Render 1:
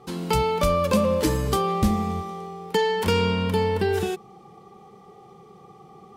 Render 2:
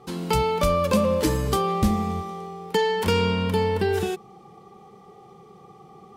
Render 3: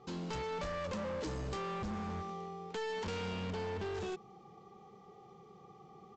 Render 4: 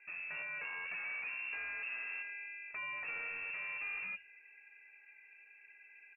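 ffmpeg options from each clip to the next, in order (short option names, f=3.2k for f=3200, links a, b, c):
-af anull
-af "acompressor=threshold=-24dB:ratio=2.5,aresample=16000,asoftclip=type=hard:threshold=-28dB,aresample=44100,volume=-8.5dB"
-filter_complex "[0:a]asplit=2[a][b];[b]adelay=13,volume=-11.5dB[c];[a][c]amix=inputs=2:normalize=0,lowpass=f=2.4k:t=q:w=0.5098,lowpass=f=2.4k:t=q:w=0.6013,lowpass=f=2.4k:t=q:w=0.9,lowpass=f=2.4k:t=q:w=2.563,afreqshift=-2800,bandreject=f=45.04:t=h:w=4,bandreject=f=90.08:t=h:w=4,bandreject=f=135.12:t=h:w=4,volume=-3.5dB"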